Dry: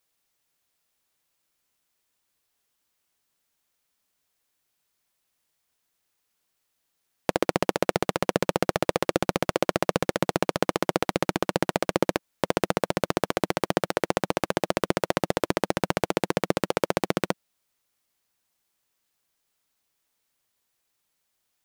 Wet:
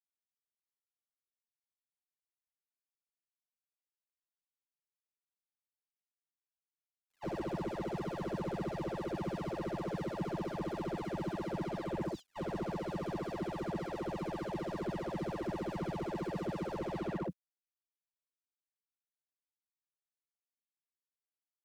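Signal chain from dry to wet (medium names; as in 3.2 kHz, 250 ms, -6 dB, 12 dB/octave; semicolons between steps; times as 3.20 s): delay that grows with frequency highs early, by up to 583 ms; level-controlled noise filter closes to 2.2 kHz, open at -25.5 dBFS; gate -33 dBFS, range -35 dB; comb of notches 250 Hz; word length cut 12-bit, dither none; slew-rate limiter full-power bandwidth 16 Hz; trim -6 dB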